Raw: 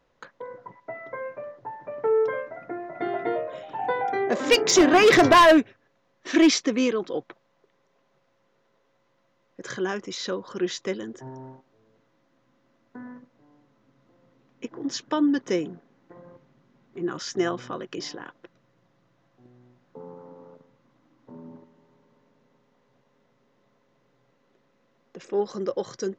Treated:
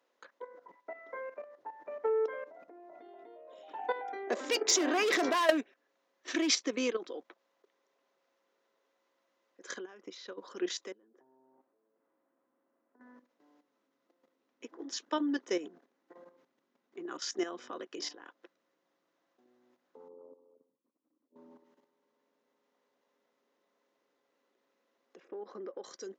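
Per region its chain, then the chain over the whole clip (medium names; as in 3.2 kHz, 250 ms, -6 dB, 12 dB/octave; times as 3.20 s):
2.44–3.68 s: high-order bell 1.7 kHz -8.5 dB 1.1 oct + compression 3:1, threshold -40 dBFS
9.78–10.38 s: compression 4:1, threshold -34 dBFS + transient shaper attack +4 dB, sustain -3 dB + distance through air 130 m
10.92–13.01 s: low-pass 1.3 kHz + compression, threshold -48 dBFS
20.08–21.36 s: resonances exaggerated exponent 2 + slow attack 164 ms + upward expansion, over -58 dBFS
25.20–25.84 s: low-pass 1.8 kHz + compression 5:1, threshold -30 dBFS
whole clip: level held to a coarse grid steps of 12 dB; high-pass 270 Hz 24 dB/octave; treble shelf 4.4 kHz +5.5 dB; trim -4.5 dB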